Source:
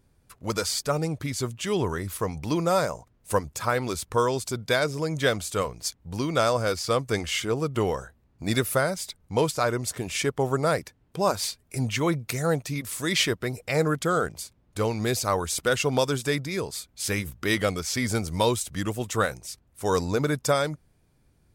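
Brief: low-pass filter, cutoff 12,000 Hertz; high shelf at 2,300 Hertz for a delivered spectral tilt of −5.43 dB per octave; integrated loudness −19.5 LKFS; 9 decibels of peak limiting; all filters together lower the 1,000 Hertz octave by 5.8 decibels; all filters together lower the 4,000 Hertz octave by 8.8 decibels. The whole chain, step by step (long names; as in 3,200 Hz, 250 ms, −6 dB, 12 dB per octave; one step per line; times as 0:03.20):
low-pass filter 12,000 Hz
parametric band 1,000 Hz −6 dB
high-shelf EQ 2,300 Hz −6 dB
parametric band 4,000 Hz −5.5 dB
level +13 dB
brickwall limiter −8 dBFS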